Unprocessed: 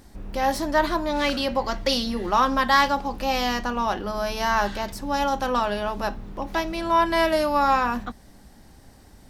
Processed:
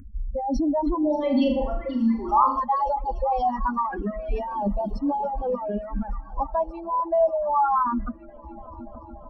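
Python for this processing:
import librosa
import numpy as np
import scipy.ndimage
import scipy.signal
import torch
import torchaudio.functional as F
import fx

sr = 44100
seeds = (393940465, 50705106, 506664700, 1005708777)

p1 = fx.spec_expand(x, sr, power=3.4)
p2 = fx.over_compress(p1, sr, threshold_db=-28.0, ratio=-0.5)
p3 = p1 + (p2 * librosa.db_to_amplitude(-1.5))
p4 = fx.peak_eq(p3, sr, hz=6200.0, db=4.5, octaves=0.49)
p5 = fx.echo_heads(p4, sr, ms=290, heads='all three', feedback_pct=66, wet_db=-20.5)
p6 = fx.rev_fdn(p5, sr, rt60_s=1.0, lf_ratio=1.5, hf_ratio=0.45, size_ms=80.0, drr_db=17.5)
p7 = fx.dereverb_blind(p6, sr, rt60_s=1.7)
p8 = fx.room_flutter(p7, sr, wall_m=6.8, rt60_s=0.56, at=(0.99, 2.6))
p9 = fx.phaser_stages(p8, sr, stages=4, low_hz=260.0, high_hz=1900.0, hz=0.25, feedback_pct=30)
y = fx.quant_dither(p9, sr, seeds[0], bits=12, dither='none', at=(4.33, 4.91))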